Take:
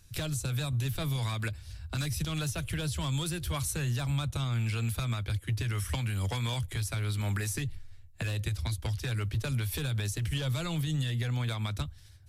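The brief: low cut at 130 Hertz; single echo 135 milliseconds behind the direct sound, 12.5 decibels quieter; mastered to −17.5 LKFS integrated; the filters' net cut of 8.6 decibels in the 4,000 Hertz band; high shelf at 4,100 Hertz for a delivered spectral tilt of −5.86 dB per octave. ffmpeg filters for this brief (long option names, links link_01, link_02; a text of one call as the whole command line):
ffmpeg -i in.wav -af "highpass=130,equalizer=frequency=4000:width_type=o:gain=-6.5,highshelf=frequency=4100:gain=-8,aecho=1:1:135:0.237,volume=18.5dB" out.wav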